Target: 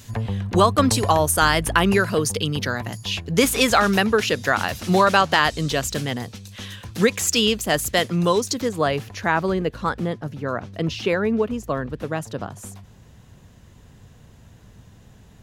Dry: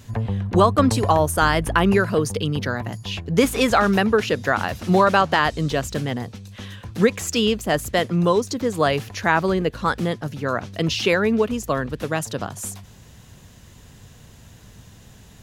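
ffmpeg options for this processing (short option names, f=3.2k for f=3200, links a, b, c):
-af "asetnsamples=n=441:p=0,asendcmd='8.69 highshelf g -2.5;9.89 highshelf g -8',highshelf=f=2.2k:g=8.5,volume=-1.5dB"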